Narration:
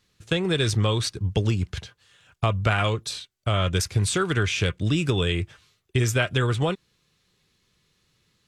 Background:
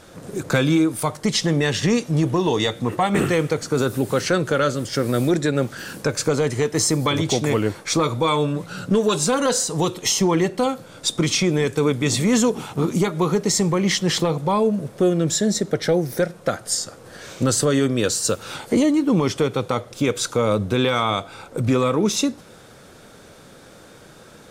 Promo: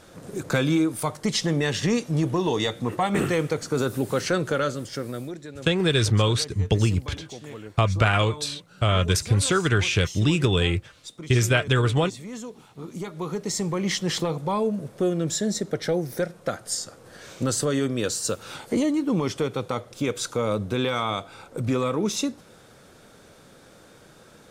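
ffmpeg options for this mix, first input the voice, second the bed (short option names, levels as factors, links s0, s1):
-filter_complex "[0:a]adelay=5350,volume=1.26[s0];[1:a]volume=2.99,afade=t=out:st=4.49:d=0.89:silence=0.177828,afade=t=in:st=12.74:d=1.19:silence=0.211349[s1];[s0][s1]amix=inputs=2:normalize=0"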